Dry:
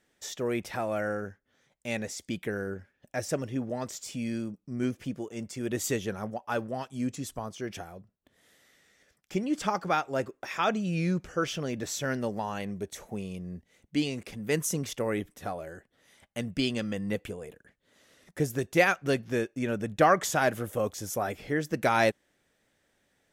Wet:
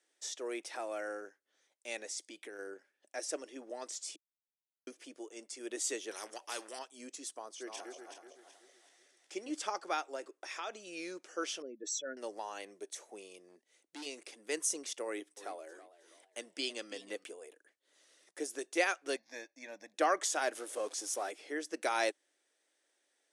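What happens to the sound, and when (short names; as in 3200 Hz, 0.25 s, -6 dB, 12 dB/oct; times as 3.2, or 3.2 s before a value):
2.16–2.59 compressor, threshold -32 dBFS
4.16–4.87 mute
6.11–6.79 spectral compressor 2:1
7.39–9.51 regenerating reverse delay 0.188 s, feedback 58%, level -3.5 dB
10.15–10.87 compressor, threshold -28 dBFS
11.62–12.17 spectral contrast raised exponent 2.2
13.48–14.06 hard clip -34 dBFS
15.05–17.24 warbling echo 0.324 s, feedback 37%, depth 160 cents, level -15 dB
19.16–19.94 fixed phaser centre 2000 Hz, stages 8
20.55–21.31 zero-crossing step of -40.5 dBFS
whole clip: Chebyshev band-pass 310–9800 Hz, order 4; high shelf 4300 Hz +11.5 dB; notch 7200 Hz, Q 28; gain -8.5 dB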